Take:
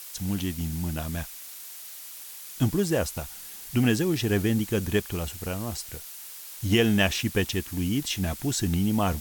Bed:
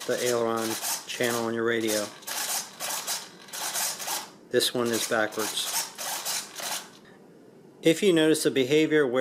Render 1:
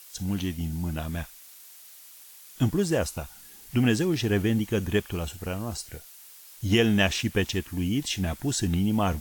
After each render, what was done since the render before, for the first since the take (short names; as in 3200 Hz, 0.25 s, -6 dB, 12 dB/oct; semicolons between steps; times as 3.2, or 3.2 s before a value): noise print and reduce 7 dB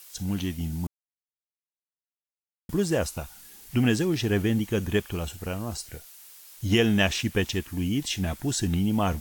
0.87–2.69 mute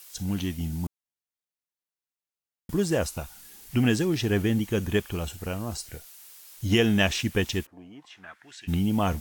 7.65–8.67 band-pass 530 Hz -> 2600 Hz, Q 3.2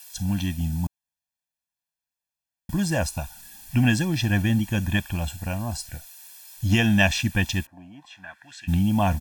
comb 1.2 ms, depth 98%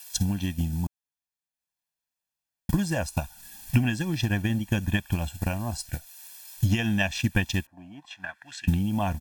compressor 2:1, threshold -28 dBFS, peak gain reduction 8 dB; transient shaper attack +8 dB, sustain -5 dB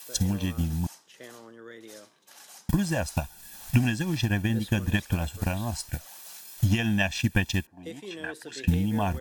add bed -19.5 dB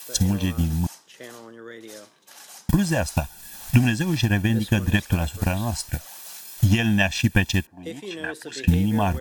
gain +5 dB